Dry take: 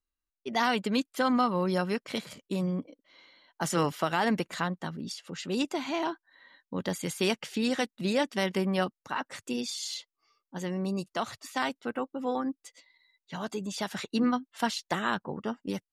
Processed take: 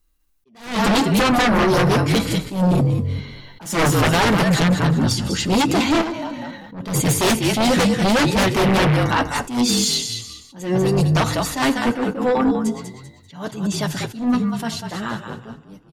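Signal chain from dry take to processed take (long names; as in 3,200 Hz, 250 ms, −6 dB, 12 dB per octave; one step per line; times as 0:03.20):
fade-out on the ending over 4.74 s
low-shelf EQ 240 Hz +10 dB
0:08.55–0:08.96: hum with harmonics 120 Hz, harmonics 19, −37 dBFS −2 dB per octave
high-shelf EQ 10,000 Hz +8.5 dB
on a send: echo with shifted repeats 195 ms, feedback 33%, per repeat −43 Hz, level −7.5 dB
on the sum: flanger 0.44 Hz, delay 5.8 ms, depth 4.7 ms, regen −26%
in parallel at −8 dB: hard clipping −23 dBFS, distortion −16 dB
on the sum: feedback delay network reverb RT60 1.1 s, low-frequency decay 1.05×, high-frequency decay 0.6×, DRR 16 dB
sine wavefolder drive 12 dB, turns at −12.5 dBFS
0:06.01–0:06.87: downward compressor 6 to 1, threshold −24 dBFS, peak gain reduction 9 dB
level that may rise only so fast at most 130 dB per second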